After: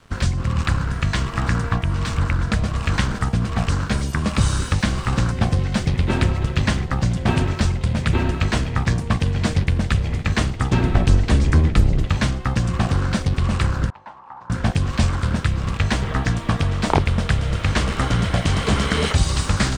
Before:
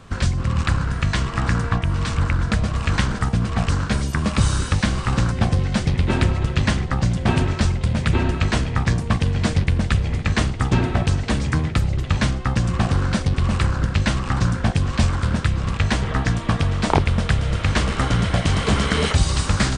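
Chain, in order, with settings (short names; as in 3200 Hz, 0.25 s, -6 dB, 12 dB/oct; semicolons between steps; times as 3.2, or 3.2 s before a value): 10.83–12.08 octaver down 1 oct, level +3 dB; crossover distortion -46 dBFS; 13.9–14.5 band-pass 900 Hz, Q 7.9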